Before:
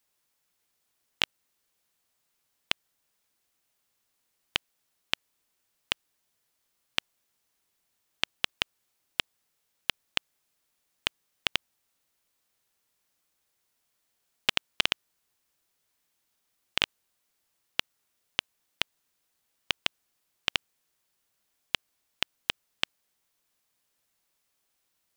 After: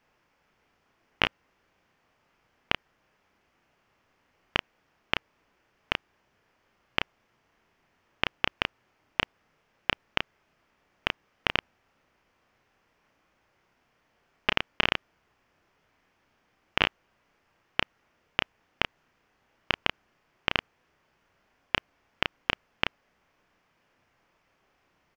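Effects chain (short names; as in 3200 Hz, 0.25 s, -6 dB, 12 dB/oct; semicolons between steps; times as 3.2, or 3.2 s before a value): bell 3900 Hz -10.5 dB 0.56 oct; in parallel at 0 dB: negative-ratio compressor -37 dBFS, ratio -1; on the sum: air absorption 260 m; doubler 32 ms -5 dB; gain +4.5 dB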